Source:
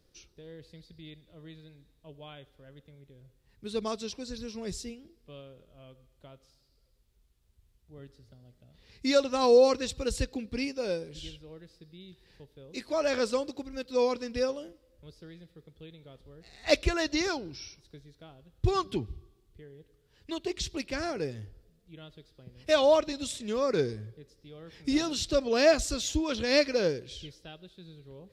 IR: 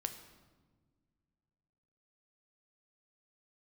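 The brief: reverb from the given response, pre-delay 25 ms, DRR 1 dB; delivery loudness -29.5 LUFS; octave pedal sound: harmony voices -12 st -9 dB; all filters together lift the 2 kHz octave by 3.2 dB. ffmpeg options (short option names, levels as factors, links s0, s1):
-filter_complex "[0:a]equalizer=f=2000:t=o:g=4,asplit=2[s0][s1];[1:a]atrim=start_sample=2205,adelay=25[s2];[s1][s2]afir=irnorm=-1:irlink=0,volume=0.944[s3];[s0][s3]amix=inputs=2:normalize=0,asplit=2[s4][s5];[s5]asetrate=22050,aresample=44100,atempo=2,volume=0.355[s6];[s4][s6]amix=inputs=2:normalize=0,volume=0.631"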